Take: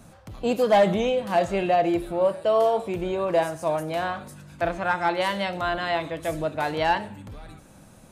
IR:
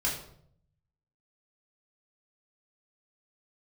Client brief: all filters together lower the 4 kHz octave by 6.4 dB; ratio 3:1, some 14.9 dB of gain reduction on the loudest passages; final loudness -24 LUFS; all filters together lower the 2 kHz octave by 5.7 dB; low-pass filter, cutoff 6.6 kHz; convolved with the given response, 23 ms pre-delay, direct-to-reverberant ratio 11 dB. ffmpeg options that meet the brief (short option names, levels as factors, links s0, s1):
-filter_complex "[0:a]lowpass=6600,equalizer=f=2000:t=o:g=-6.5,equalizer=f=4000:t=o:g=-5.5,acompressor=threshold=0.0158:ratio=3,asplit=2[s0][s1];[1:a]atrim=start_sample=2205,adelay=23[s2];[s1][s2]afir=irnorm=-1:irlink=0,volume=0.126[s3];[s0][s3]amix=inputs=2:normalize=0,volume=4.22"